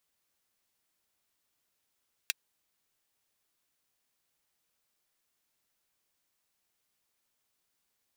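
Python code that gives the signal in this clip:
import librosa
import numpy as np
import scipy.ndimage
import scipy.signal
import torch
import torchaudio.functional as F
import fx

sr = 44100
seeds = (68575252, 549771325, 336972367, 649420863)

y = fx.drum_hat(sr, length_s=0.24, from_hz=2200.0, decay_s=0.03)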